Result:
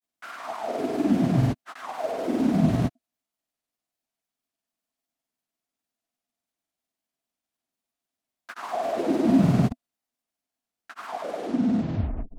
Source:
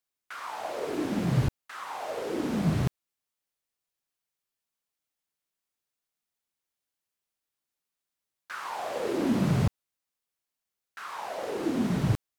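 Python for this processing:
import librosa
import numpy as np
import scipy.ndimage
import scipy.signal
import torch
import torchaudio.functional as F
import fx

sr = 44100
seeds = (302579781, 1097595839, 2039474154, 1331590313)

y = fx.tape_stop_end(x, sr, length_s=1.3)
y = fx.small_body(y, sr, hz=(250.0, 670.0), ring_ms=35, db=12)
y = fx.granulator(y, sr, seeds[0], grain_ms=100.0, per_s=20.0, spray_ms=100.0, spread_st=0)
y = y * 10.0 ** (1.0 / 20.0)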